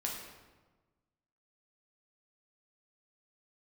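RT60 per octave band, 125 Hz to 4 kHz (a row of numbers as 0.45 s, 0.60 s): 1.7 s, 1.5 s, 1.3 s, 1.2 s, 1.0 s, 0.85 s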